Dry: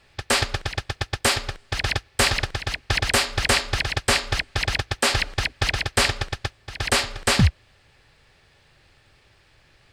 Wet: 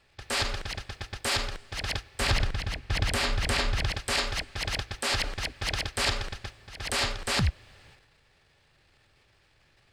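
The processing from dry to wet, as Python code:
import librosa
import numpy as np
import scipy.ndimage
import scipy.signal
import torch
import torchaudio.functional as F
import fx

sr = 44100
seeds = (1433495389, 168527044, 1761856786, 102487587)

y = fx.transient(x, sr, attack_db=-5, sustain_db=11)
y = fx.bass_treble(y, sr, bass_db=7, treble_db=-4, at=(2.21, 3.92))
y = y * 10.0 ** (-7.5 / 20.0)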